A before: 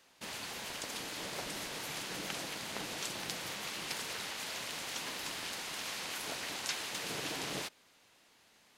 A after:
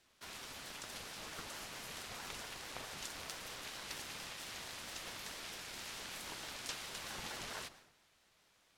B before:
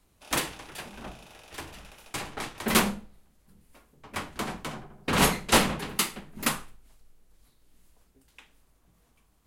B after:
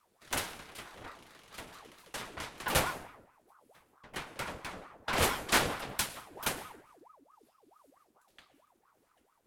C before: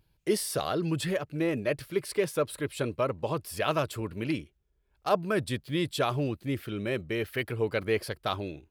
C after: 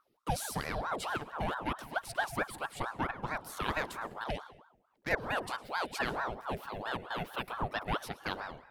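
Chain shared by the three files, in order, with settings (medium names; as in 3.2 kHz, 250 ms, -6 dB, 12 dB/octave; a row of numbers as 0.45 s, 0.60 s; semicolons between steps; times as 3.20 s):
plate-style reverb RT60 0.83 s, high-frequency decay 0.6×, pre-delay 95 ms, DRR 14.5 dB; ring modulator with a swept carrier 770 Hz, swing 65%, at 4.5 Hz; trim -3.5 dB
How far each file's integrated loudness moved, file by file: -6.5 LU, -6.5 LU, -6.0 LU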